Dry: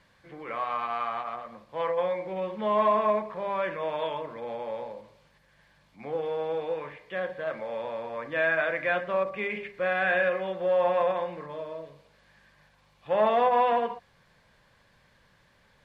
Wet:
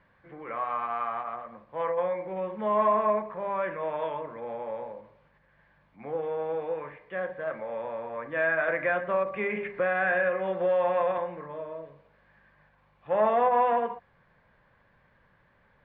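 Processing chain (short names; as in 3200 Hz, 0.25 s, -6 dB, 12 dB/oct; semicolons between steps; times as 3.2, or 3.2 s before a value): Chebyshev low-pass 1700 Hz, order 2; 8.68–11.18 three-band squash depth 70%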